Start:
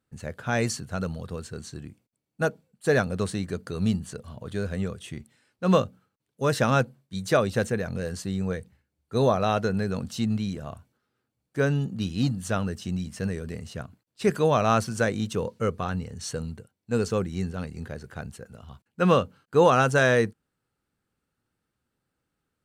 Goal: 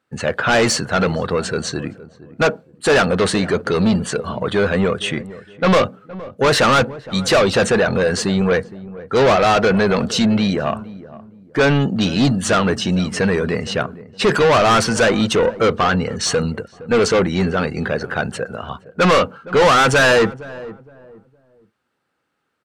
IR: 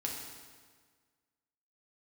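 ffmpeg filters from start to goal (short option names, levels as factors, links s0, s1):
-filter_complex "[0:a]highshelf=f=4500:g=-10.5,asplit=2[s0][s1];[s1]highpass=f=720:p=1,volume=39.8,asoftclip=type=tanh:threshold=0.501[s2];[s0][s2]amix=inputs=2:normalize=0,lowpass=f=7000:p=1,volume=0.501,afftdn=nr=12:nf=-38,asplit=2[s3][s4];[s4]adelay=465,lowpass=f=830:p=1,volume=0.158,asplit=2[s5][s6];[s6]adelay=465,lowpass=f=830:p=1,volume=0.32,asplit=2[s7][s8];[s8]adelay=465,lowpass=f=830:p=1,volume=0.32[s9];[s5][s7][s9]amix=inputs=3:normalize=0[s10];[s3][s10]amix=inputs=2:normalize=0"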